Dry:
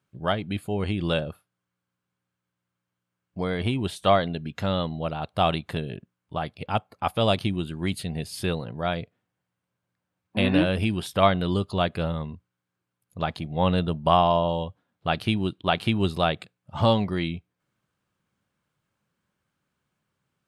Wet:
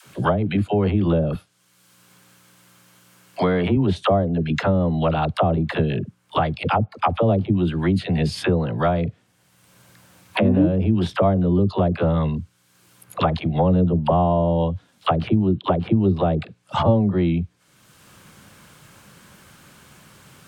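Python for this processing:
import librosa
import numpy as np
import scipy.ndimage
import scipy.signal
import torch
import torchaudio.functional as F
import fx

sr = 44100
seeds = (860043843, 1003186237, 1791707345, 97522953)

y = fx.highpass(x, sr, hz=130.0, slope=12, at=(1.29, 3.71))
y = fx.env_lowpass_down(y, sr, base_hz=510.0, full_db=-20.5)
y = fx.high_shelf(y, sr, hz=3400.0, db=9.5)
y = fx.dispersion(y, sr, late='lows', ms=59.0, hz=440.0)
y = fx.band_squash(y, sr, depth_pct=70)
y = y * librosa.db_to_amplitude(7.5)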